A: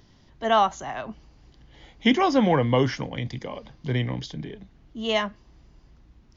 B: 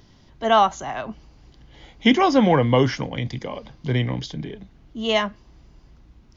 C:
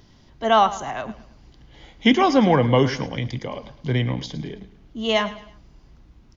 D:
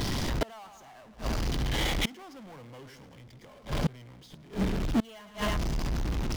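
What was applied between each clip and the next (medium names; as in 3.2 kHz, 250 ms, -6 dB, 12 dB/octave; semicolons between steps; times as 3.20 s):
band-stop 1.8 kHz, Q 26; trim +3.5 dB
feedback delay 108 ms, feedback 38%, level -15.5 dB
power-law waveshaper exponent 0.35; inverted gate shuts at -11 dBFS, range -29 dB; trim -8 dB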